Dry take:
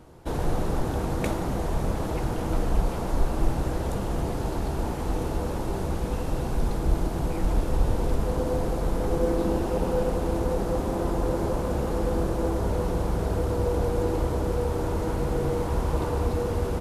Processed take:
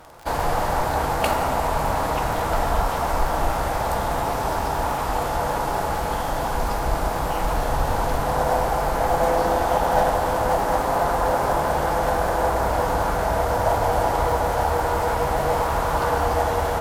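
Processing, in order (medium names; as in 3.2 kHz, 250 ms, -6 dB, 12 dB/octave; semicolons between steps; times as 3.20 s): crackle 21 per s -40 dBFS; formant shift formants +3 st; resonant low shelf 500 Hz -9.5 dB, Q 1.5; on a send: reverberation RT60 4.6 s, pre-delay 4 ms, DRR 6.5 dB; on the sum: trim +8 dB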